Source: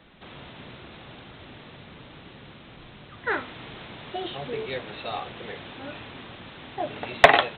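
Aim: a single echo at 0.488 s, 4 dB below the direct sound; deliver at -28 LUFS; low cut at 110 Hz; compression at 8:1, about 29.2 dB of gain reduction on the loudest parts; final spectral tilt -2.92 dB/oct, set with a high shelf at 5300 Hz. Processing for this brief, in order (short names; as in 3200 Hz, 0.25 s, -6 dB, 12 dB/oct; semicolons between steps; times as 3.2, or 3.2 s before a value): HPF 110 Hz; high shelf 5300 Hz -8 dB; compressor 8:1, threshold -40 dBFS; echo 0.488 s -4 dB; gain +15.5 dB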